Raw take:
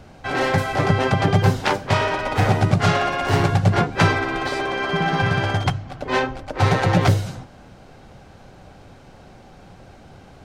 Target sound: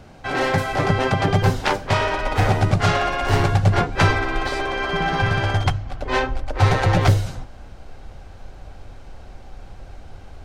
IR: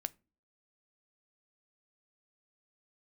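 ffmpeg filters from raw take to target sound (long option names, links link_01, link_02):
-af "asubboost=boost=8:cutoff=56"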